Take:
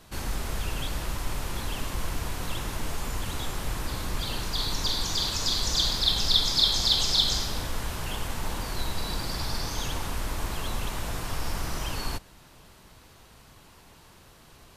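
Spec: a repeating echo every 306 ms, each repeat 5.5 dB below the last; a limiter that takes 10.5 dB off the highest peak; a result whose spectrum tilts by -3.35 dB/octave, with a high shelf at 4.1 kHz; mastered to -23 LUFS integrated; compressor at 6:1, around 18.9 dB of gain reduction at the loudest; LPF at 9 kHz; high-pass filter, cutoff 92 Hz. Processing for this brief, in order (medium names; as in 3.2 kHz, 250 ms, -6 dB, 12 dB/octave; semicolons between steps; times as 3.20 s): high-pass 92 Hz; low-pass 9 kHz; treble shelf 4.1 kHz +6.5 dB; compression 6:1, threshold -36 dBFS; peak limiter -35 dBFS; feedback delay 306 ms, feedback 53%, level -5.5 dB; trim +18.5 dB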